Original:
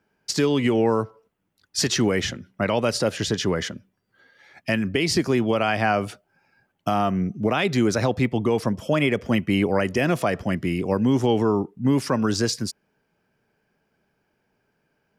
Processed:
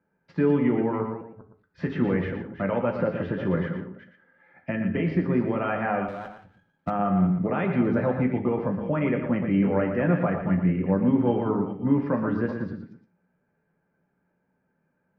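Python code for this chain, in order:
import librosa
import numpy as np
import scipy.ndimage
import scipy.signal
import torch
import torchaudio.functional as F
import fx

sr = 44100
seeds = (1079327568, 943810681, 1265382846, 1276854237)

y = fx.reverse_delay(x, sr, ms=202, wet_db=-10.0)
y = scipy.signal.sosfilt(scipy.signal.butter(4, 2000.0, 'lowpass', fs=sr, output='sos'), y)
y = fx.peak_eq(y, sr, hz=230.0, db=3.0, octaves=1.5)
y = y + 10.0 ** (-8.5 / 20.0) * np.pad(y, (int(117 * sr / 1000.0), 0))[:len(y)]
y = fx.rev_fdn(y, sr, rt60_s=0.4, lf_ratio=1.0, hf_ratio=0.8, size_ms=34.0, drr_db=3.0)
y = fx.running_max(y, sr, window=5, at=(6.08, 6.9))
y = y * librosa.db_to_amplitude(-6.5)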